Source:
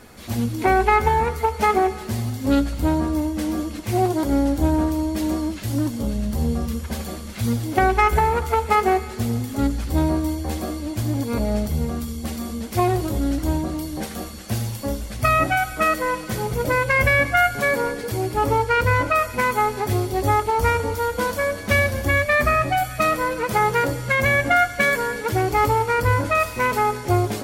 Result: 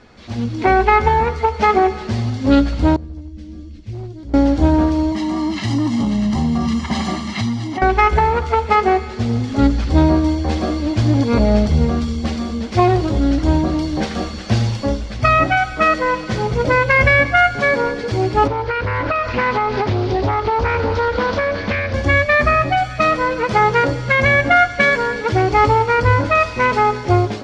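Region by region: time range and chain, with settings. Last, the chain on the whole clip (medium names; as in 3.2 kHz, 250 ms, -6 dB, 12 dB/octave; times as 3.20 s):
2.96–4.34 s: amplifier tone stack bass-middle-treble 10-0-1 + hard clipper -32 dBFS
5.12–7.82 s: high-pass 160 Hz + comb 1 ms, depth 86% + compression, threshold -24 dBFS
18.47–21.94 s: low-pass 5.4 kHz 24 dB/octave + compression 8:1, threshold -24 dBFS + loudspeaker Doppler distortion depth 0.37 ms
whole clip: low-pass 5.5 kHz 24 dB/octave; level rider; trim -1 dB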